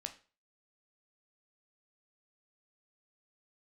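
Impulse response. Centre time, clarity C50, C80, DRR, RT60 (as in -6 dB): 9 ms, 13.5 dB, 18.5 dB, 5.5 dB, 0.35 s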